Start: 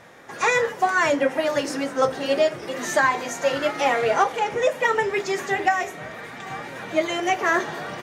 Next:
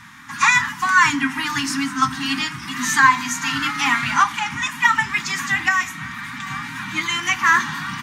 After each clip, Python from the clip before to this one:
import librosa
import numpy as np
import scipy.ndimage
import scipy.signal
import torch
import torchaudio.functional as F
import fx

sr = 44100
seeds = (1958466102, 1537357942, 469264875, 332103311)

y = scipy.signal.sosfilt(scipy.signal.ellip(3, 1.0, 60, [260.0, 1000.0], 'bandstop', fs=sr, output='sos'), x)
y = y * librosa.db_to_amplitude(8.0)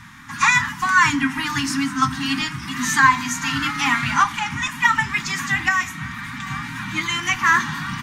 y = fx.low_shelf(x, sr, hz=140.0, db=11.0)
y = y * librosa.db_to_amplitude(-1.0)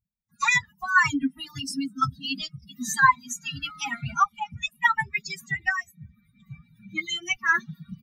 y = fx.bin_expand(x, sr, power=3.0)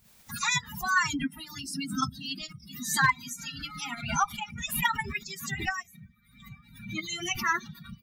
y = fx.spec_clip(x, sr, under_db=15)
y = np.clip(y, -10.0 ** (-8.5 / 20.0), 10.0 ** (-8.5 / 20.0))
y = fx.pre_swell(y, sr, db_per_s=82.0)
y = y * librosa.db_to_amplitude(-5.5)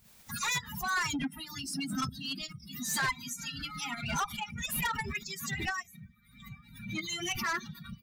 y = 10.0 ** (-27.0 / 20.0) * np.tanh(x / 10.0 ** (-27.0 / 20.0))